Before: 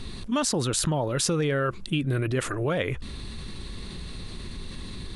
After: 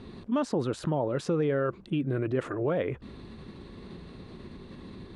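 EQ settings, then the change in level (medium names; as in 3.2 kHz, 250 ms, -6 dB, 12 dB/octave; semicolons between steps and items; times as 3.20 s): band-pass filter 410 Hz, Q 0.55; 0.0 dB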